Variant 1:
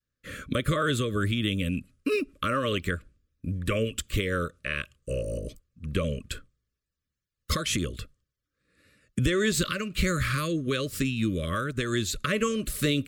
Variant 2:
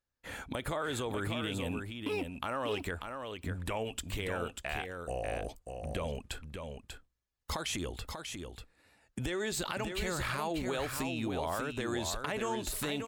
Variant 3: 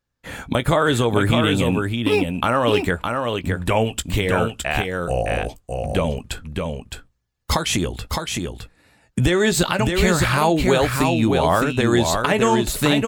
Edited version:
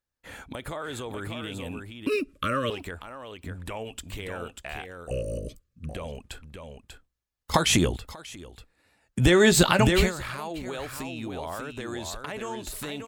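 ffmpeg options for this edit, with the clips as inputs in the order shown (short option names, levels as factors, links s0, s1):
-filter_complex "[0:a]asplit=2[s0][s1];[2:a]asplit=2[s2][s3];[1:a]asplit=5[s4][s5][s6][s7][s8];[s4]atrim=end=2.072[s9];[s0]atrim=start=2.068:end=2.702[s10];[s5]atrim=start=2.698:end=5.112[s11];[s1]atrim=start=5.108:end=5.892[s12];[s6]atrim=start=5.888:end=7.542[s13];[s2]atrim=start=7.538:end=7.972[s14];[s7]atrim=start=7.968:end=9.29[s15];[s3]atrim=start=9.13:end=10.12[s16];[s8]atrim=start=9.96[s17];[s9][s10]acrossfade=d=0.004:c1=hsin:c2=hsin[s18];[s18][s11]acrossfade=d=0.004:c1=hsin:c2=hsin[s19];[s19][s12]acrossfade=d=0.004:c1=hsin:c2=hsin[s20];[s20][s13]acrossfade=d=0.004:c1=hsin:c2=hsin[s21];[s21][s14]acrossfade=d=0.004:c1=hsin:c2=hsin[s22];[s22][s15]acrossfade=d=0.004:c1=hsin:c2=hsin[s23];[s23][s16]acrossfade=d=0.16:c1=tri:c2=tri[s24];[s24][s17]acrossfade=d=0.16:c1=tri:c2=tri"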